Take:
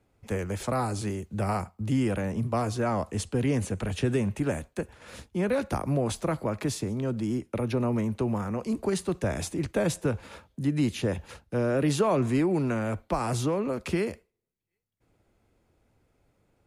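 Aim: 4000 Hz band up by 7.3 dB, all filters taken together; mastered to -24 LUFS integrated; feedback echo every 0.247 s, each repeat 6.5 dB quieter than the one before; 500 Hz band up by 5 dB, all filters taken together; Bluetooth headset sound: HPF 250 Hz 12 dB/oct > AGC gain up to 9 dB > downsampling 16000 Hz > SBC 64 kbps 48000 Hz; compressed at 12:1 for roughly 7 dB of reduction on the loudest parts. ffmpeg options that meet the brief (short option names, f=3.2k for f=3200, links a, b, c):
-af "equalizer=f=500:t=o:g=6.5,equalizer=f=4k:t=o:g=9,acompressor=threshold=-23dB:ratio=12,highpass=250,aecho=1:1:247|494|741|988|1235|1482:0.473|0.222|0.105|0.0491|0.0231|0.0109,dynaudnorm=m=9dB,aresample=16000,aresample=44100,volume=3dB" -ar 48000 -c:a sbc -b:a 64k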